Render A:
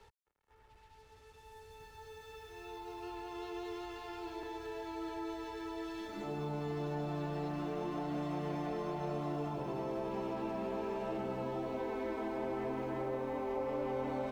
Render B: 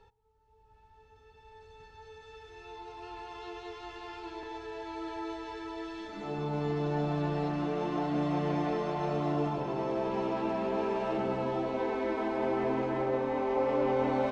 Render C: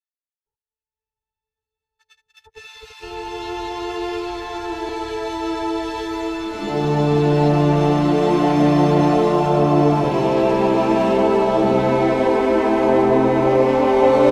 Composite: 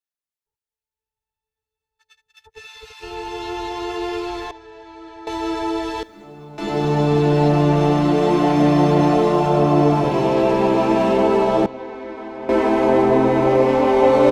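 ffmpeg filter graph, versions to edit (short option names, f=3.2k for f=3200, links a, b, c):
-filter_complex "[1:a]asplit=2[a][b];[2:a]asplit=4[c][d][e][f];[c]atrim=end=4.512[g];[a]atrim=start=4.508:end=5.272[h];[d]atrim=start=5.268:end=6.032[i];[0:a]atrim=start=6.028:end=6.582[j];[e]atrim=start=6.578:end=11.662[k];[b]atrim=start=11.658:end=12.492[l];[f]atrim=start=12.488[m];[g][h]acrossfade=d=0.004:c1=hsin:c2=hsin[n];[n][i]acrossfade=d=0.004:c1=hsin:c2=hsin[o];[o][j]acrossfade=d=0.004:c1=hsin:c2=hsin[p];[p][k]acrossfade=d=0.004:c1=hsin:c2=hsin[q];[q][l]acrossfade=d=0.004:c1=hsin:c2=hsin[r];[r][m]acrossfade=d=0.004:c1=hsin:c2=hsin"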